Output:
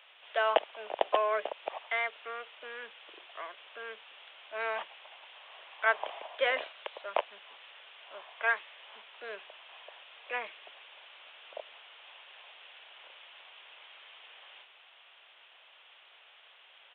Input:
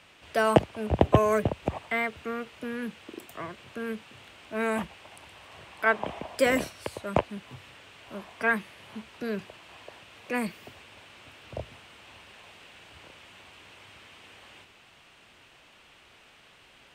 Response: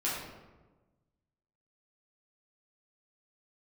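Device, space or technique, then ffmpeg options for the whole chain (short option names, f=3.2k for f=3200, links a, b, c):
musical greeting card: -filter_complex "[0:a]asettb=1/sr,asplit=3[a][b][c];[a]atrim=end=8.344[d];[b]atrim=start=8.34:end=8.75,asetpts=PTS-STARTPTS,afade=t=in:d=0.004:c=qsin,afade=t=out:st=0.406:d=0.004:c=qsin,highpass=290[e];[c]atrim=start=8.746[f];[d][e]acrossfade=d=0.004:c1=hsin:c2=qsin[g];[g][f]acrossfade=d=0.004:c1=qsin:c2=hsin,aresample=8000,aresample=44100,highpass=f=550:w=0.5412,highpass=f=550:w=1.3066,equalizer=f=3.3k:t=o:w=0.43:g=5.5,volume=-3dB"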